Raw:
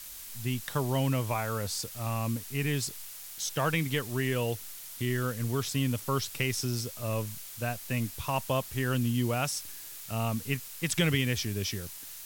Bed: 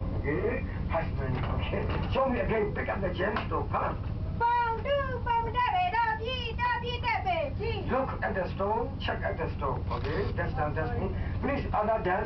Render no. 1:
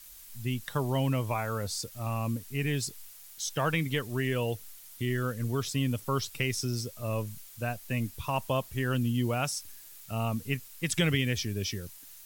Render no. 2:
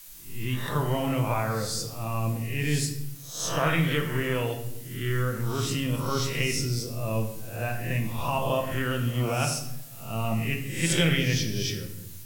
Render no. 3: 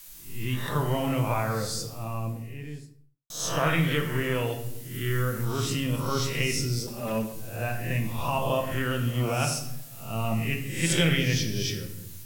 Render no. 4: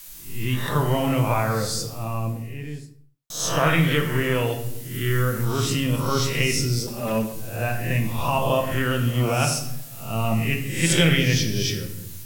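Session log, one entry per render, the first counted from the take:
denoiser 8 dB, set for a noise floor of -44 dBFS
spectral swells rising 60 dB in 0.57 s; shoebox room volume 230 m³, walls mixed, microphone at 0.76 m
1.54–3.3 studio fade out; 4.94–5.45 high shelf 10000 Hz +6 dB; 6.87–7.33 minimum comb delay 5.1 ms
gain +5 dB

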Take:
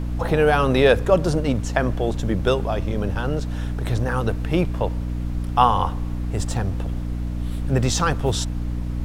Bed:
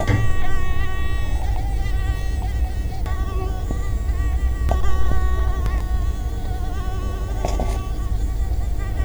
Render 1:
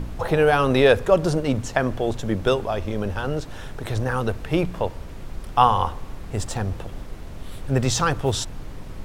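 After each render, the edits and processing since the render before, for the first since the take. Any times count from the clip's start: de-hum 60 Hz, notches 5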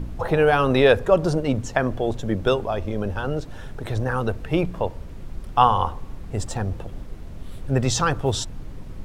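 denoiser 6 dB, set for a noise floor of -37 dBFS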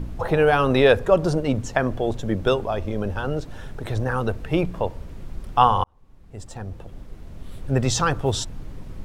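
5.84–7.74 fade in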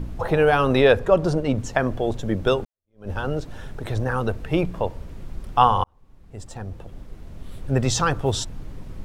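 0.81–1.58 high shelf 6200 Hz -5 dB; 2.65–3.1 fade in exponential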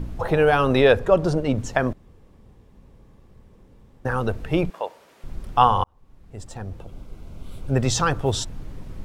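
1.93–4.05 room tone; 4.7–5.24 HPF 620 Hz; 6.8–7.74 Butterworth band-stop 1800 Hz, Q 5.4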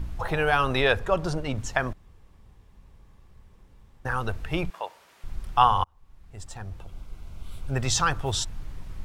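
graphic EQ 125/250/500 Hz -4/-8/-8 dB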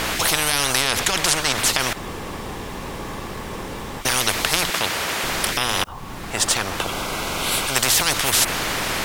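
maximiser +14.5 dB; spectral compressor 10:1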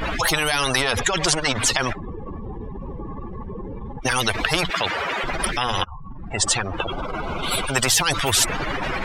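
spectral contrast raised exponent 2.9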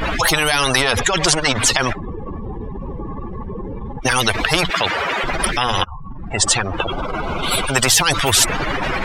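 gain +4.5 dB; limiter -1 dBFS, peak gain reduction 1.5 dB

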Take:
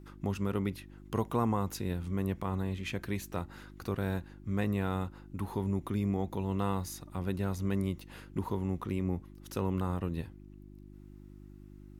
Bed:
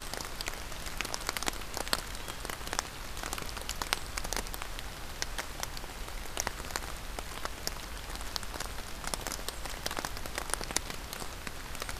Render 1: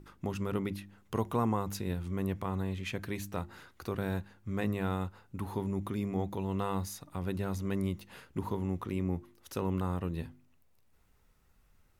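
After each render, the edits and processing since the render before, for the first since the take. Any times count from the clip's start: de-hum 50 Hz, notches 7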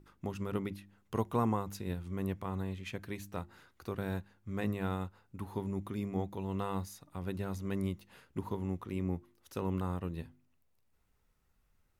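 upward expander 1.5:1, over -41 dBFS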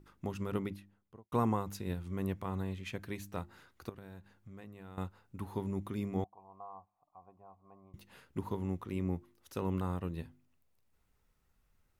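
0.59–1.32 studio fade out; 3.89–4.98 compressor 5:1, threshold -48 dBFS; 6.24–7.94 vocal tract filter a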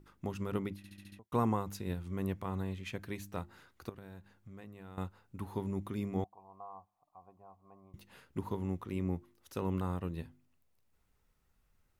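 0.77 stutter in place 0.07 s, 6 plays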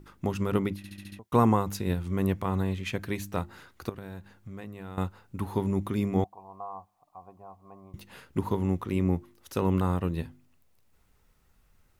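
gain +9 dB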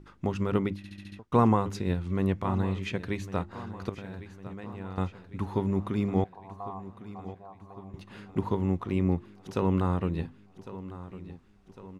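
air absorption 75 m; feedback echo 1.104 s, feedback 54%, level -15 dB

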